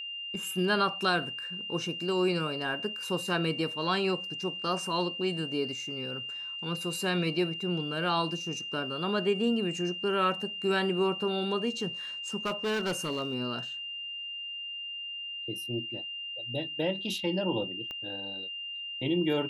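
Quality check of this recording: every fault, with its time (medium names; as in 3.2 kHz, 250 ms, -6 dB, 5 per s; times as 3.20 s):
whine 2.8 kHz -36 dBFS
12.45–13.35 s: clipped -26.5 dBFS
17.91 s: pop -26 dBFS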